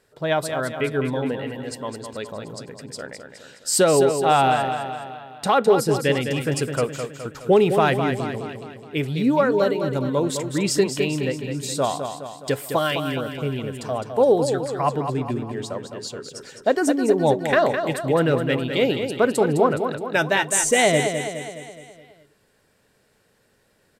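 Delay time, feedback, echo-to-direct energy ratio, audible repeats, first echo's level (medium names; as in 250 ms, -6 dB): 209 ms, 53%, -6.0 dB, 5, -7.5 dB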